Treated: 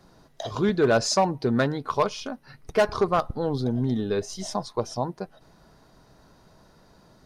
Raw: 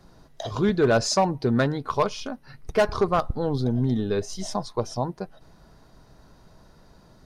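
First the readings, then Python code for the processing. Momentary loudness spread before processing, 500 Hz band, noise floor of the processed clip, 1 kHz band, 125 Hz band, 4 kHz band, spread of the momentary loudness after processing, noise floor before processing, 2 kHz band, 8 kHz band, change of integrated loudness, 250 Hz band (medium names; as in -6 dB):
14 LU, -0.5 dB, -57 dBFS, 0.0 dB, -2.5 dB, 0.0 dB, 14 LU, -54 dBFS, 0.0 dB, 0.0 dB, -0.5 dB, -1.0 dB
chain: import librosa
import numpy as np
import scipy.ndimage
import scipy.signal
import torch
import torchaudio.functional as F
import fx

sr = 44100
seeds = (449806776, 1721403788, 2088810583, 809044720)

y = fx.low_shelf(x, sr, hz=91.0, db=-8.5)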